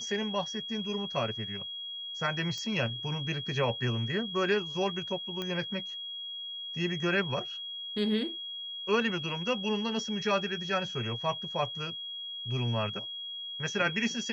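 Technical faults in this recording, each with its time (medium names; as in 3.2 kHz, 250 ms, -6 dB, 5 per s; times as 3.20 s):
whine 3.3 kHz -37 dBFS
2.58 s: pop -26 dBFS
5.42 s: pop -21 dBFS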